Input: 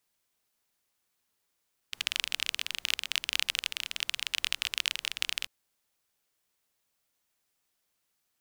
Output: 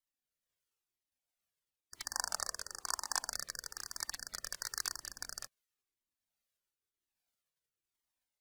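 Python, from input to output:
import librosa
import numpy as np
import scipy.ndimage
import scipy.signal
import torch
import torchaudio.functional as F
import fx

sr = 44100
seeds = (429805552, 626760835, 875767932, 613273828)

y = fx.spec_gate(x, sr, threshold_db=-10, keep='weak')
y = fx.graphic_eq_10(y, sr, hz=(125, 500, 1000, 2000, 8000, 16000), db=(-4, 3, 11, -4, 5, -3), at=(2.13, 3.32))
y = fx.rotary(y, sr, hz=1.2)
y = fx.comb_cascade(y, sr, direction='falling', hz=1.0)
y = y * librosa.db_to_amplitude(5.5)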